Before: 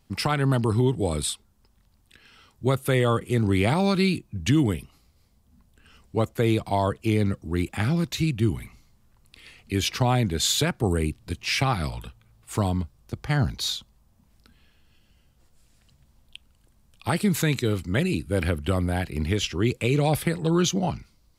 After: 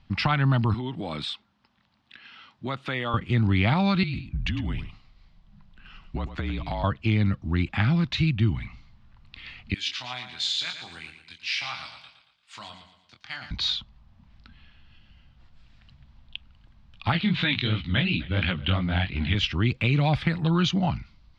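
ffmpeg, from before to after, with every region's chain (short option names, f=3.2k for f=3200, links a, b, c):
-filter_complex "[0:a]asettb=1/sr,asplit=3[a][b][c];[a]atrim=end=0.744[d];[b]atrim=start=0.74:end=3.14,asetpts=PTS-STARTPTS,afade=t=in:d=0.004:c=qsin,afade=t=out:st=2.396:d=0.004:c=qsin,highpass=230,acompressor=threshold=-31dB:ratio=2:attack=3.2:release=140:knee=1:detection=peak[e];[c]atrim=start=3.136[f];[d][e]acrossfade=d=0.004:c1=hsin:c2=qsin[g];[g][f]acrossfade=d=0.004:c1=qsin:c2=hsin,asettb=1/sr,asplit=3[h][i][j];[h]atrim=end=4.034[k];[i]atrim=start=4.03:end=6.84,asetpts=PTS-STARTPTS,afade=t=in:d=0.004:c=qsin,afade=t=out:st=2.806:d=0.004:c=qsin,afreqshift=-40,acompressor=threshold=-28dB:ratio=10:attack=3.2:release=140:knee=1:detection=peak,aecho=1:1:103:0.266,atrim=end_sample=123921[l];[j]atrim=start=6.836[m];[k][l]acrossfade=d=0.004:c1=hsin:c2=qsin[n];[n][m]acrossfade=d=0.004:c1=qsin:c2=hsin,asettb=1/sr,asplit=3[o][p][q];[o]atrim=end=9.744[r];[p]atrim=start=9.74:end=13.51,asetpts=PTS-STARTPTS,afade=t=in:d=0.004:c=qsin,afade=t=out:st=3.766:d=0.004:c=qsin,aderivative,asplit=2[s][t];[t]adelay=24,volume=-6dB[u];[s][u]amix=inputs=2:normalize=0,atrim=end_sample=166257,aecho=1:1:115|230|345|460|575:0.335|0.147|0.0648|0.0285|0.0126,atrim=end_sample=166257[v];[q]atrim=start=13.506[w];[r][v]acrossfade=d=0.004:c1=hsin:c2=qsin[x];[x][w]acrossfade=d=0.004:c1=qsin:c2=hsin,asettb=1/sr,asplit=3[y][z][aa];[y]atrim=end=17.124[ab];[z]atrim=start=17.12:end=19.35,asetpts=PTS-STARTPTS,afade=t=in:d=0.004:c=qsin,afade=t=out:st=2.226:d=0.004:c=qsin,aecho=1:1:255:0.0794,atrim=end_sample=98343,flanger=delay=16:depth=7.1:speed=2.9,lowpass=f=3.4k:t=q:w=3.2[ac];[aa]atrim=start=19.346[ad];[ab][ac]acrossfade=d=0.004:c1=hsin:c2=qsin[ae];[ae][ad]acrossfade=d=0.004:c1=qsin:c2=hsin,lowpass=f=4k:w=0.5412,lowpass=f=4k:w=1.3066,equalizer=f=430:w=1.6:g=-14.5,acompressor=threshold=-33dB:ratio=1.5,volume=7dB"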